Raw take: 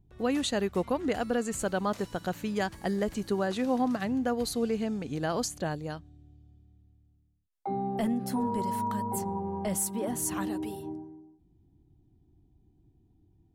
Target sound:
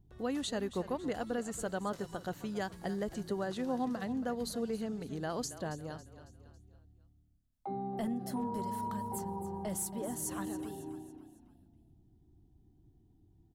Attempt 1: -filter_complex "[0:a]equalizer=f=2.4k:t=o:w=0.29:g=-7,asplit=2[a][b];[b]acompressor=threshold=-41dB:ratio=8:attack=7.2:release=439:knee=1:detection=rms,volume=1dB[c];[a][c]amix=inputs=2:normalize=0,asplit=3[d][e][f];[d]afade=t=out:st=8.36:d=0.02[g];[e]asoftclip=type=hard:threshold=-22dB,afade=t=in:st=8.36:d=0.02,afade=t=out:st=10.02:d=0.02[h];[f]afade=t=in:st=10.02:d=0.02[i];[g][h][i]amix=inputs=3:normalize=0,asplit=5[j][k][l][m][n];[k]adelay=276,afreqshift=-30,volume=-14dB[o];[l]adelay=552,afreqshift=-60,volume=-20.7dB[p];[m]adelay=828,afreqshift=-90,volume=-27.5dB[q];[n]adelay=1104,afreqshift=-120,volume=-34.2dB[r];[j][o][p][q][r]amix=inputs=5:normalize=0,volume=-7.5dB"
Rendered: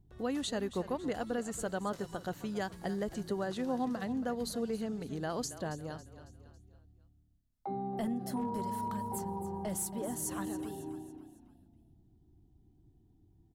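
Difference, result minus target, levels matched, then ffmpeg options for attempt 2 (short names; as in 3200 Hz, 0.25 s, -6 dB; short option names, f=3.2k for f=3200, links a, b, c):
compressor: peak gain reduction -6 dB
-filter_complex "[0:a]equalizer=f=2.4k:t=o:w=0.29:g=-7,asplit=2[a][b];[b]acompressor=threshold=-48dB:ratio=8:attack=7.2:release=439:knee=1:detection=rms,volume=1dB[c];[a][c]amix=inputs=2:normalize=0,asplit=3[d][e][f];[d]afade=t=out:st=8.36:d=0.02[g];[e]asoftclip=type=hard:threshold=-22dB,afade=t=in:st=8.36:d=0.02,afade=t=out:st=10.02:d=0.02[h];[f]afade=t=in:st=10.02:d=0.02[i];[g][h][i]amix=inputs=3:normalize=0,asplit=5[j][k][l][m][n];[k]adelay=276,afreqshift=-30,volume=-14dB[o];[l]adelay=552,afreqshift=-60,volume=-20.7dB[p];[m]adelay=828,afreqshift=-90,volume=-27.5dB[q];[n]adelay=1104,afreqshift=-120,volume=-34.2dB[r];[j][o][p][q][r]amix=inputs=5:normalize=0,volume=-7.5dB"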